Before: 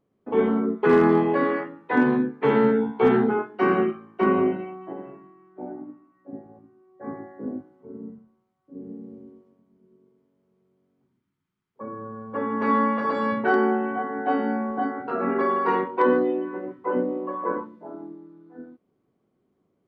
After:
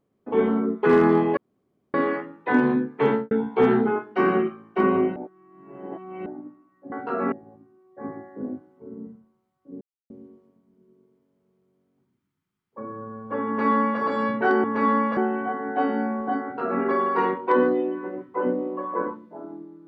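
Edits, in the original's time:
1.37 s: insert room tone 0.57 s
2.48–2.74 s: studio fade out
4.59–5.69 s: reverse
8.84–9.13 s: mute
12.50–13.03 s: copy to 13.67 s
14.93–15.33 s: copy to 6.35 s

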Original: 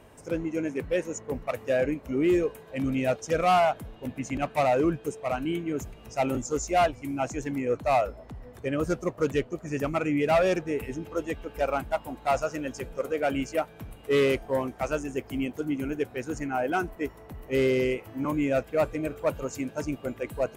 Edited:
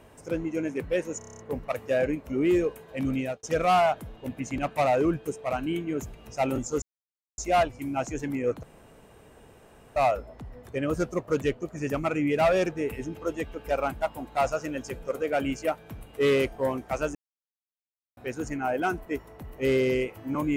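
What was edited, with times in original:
1.18 s: stutter 0.03 s, 8 plays
2.94–3.22 s: fade out
6.61 s: insert silence 0.56 s
7.86 s: insert room tone 1.33 s
15.05–16.07 s: mute

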